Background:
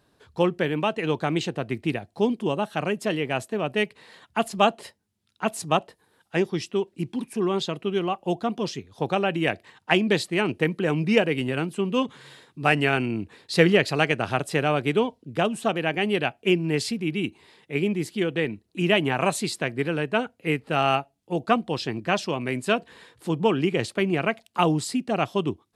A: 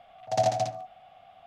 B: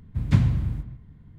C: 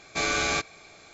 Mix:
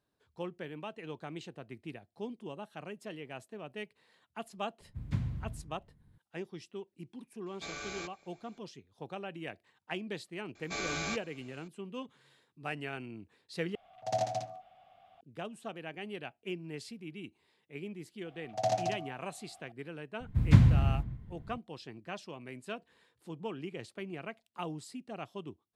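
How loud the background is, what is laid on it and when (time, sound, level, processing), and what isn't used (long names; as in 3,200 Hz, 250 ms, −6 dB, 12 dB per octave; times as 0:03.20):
background −18 dB
0:04.80: mix in B −14.5 dB
0:07.46: mix in C −16.5 dB
0:10.55: mix in C −10.5 dB
0:13.75: overwrite with A −7.5 dB
0:18.26: mix in A −6 dB
0:20.20: mix in B −1 dB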